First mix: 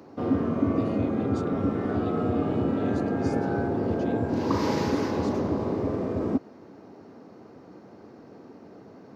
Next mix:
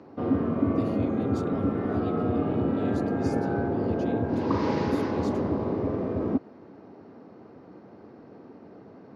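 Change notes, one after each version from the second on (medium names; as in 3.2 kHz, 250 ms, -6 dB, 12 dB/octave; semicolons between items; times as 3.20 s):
speech: remove steep low-pass 9.6 kHz 48 dB/octave; background: add distance through air 170 m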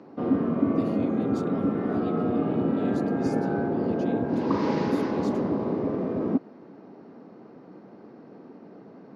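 master: add resonant low shelf 120 Hz -9 dB, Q 1.5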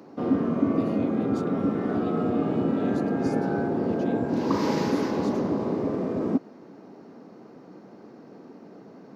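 background: remove distance through air 170 m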